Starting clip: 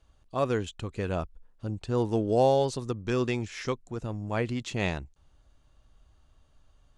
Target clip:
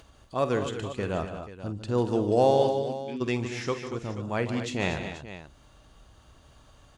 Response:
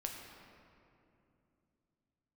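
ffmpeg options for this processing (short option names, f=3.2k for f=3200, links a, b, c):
-filter_complex "[0:a]highpass=f=100:p=1,acompressor=mode=upward:threshold=-45dB:ratio=2.5,asplit=3[a][b][c];[a]afade=t=out:st=2.68:d=0.02[d];[b]asplit=3[e][f][g];[e]bandpass=f=270:t=q:w=8,volume=0dB[h];[f]bandpass=f=2.29k:t=q:w=8,volume=-6dB[i];[g]bandpass=f=3.01k:t=q:w=8,volume=-9dB[j];[h][i][j]amix=inputs=3:normalize=0,afade=t=in:st=2.68:d=0.02,afade=t=out:st=3.2:d=0.02[k];[c]afade=t=in:st=3.2:d=0.02[l];[d][k][l]amix=inputs=3:normalize=0,aecho=1:1:49|149|185|234|249|483:0.224|0.282|0.15|0.299|0.141|0.211,volume=1dB"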